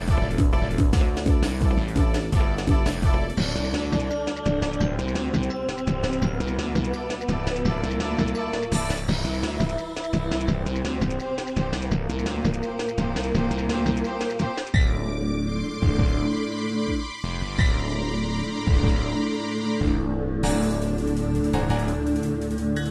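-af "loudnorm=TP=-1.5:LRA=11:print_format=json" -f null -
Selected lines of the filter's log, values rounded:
"input_i" : "-24.8",
"input_tp" : "-6.6",
"input_lra" : "2.8",
"input_thresh" : "-34.8",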